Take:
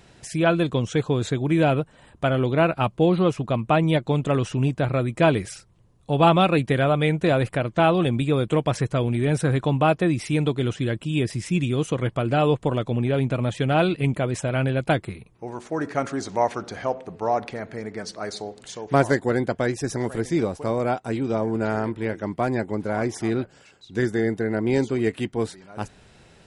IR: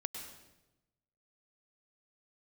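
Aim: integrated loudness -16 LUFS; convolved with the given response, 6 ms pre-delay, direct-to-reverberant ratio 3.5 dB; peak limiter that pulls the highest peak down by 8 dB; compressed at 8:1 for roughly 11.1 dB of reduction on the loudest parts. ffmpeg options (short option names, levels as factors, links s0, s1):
-filter_complex "[0:a]acompressor=threshold=0.0631:ratio=8,alimiter=limit=0.1:level=0:latency=1,asplit=2[s0][s1];[1:a]atrim=start_sample=2205,adelay=6[s2];[s1][s2]afir=irnorm=-1:irlink=0,volume=0.668[s3];[s0][s3]amix=inputs=2:normalize=0,volume=4.47"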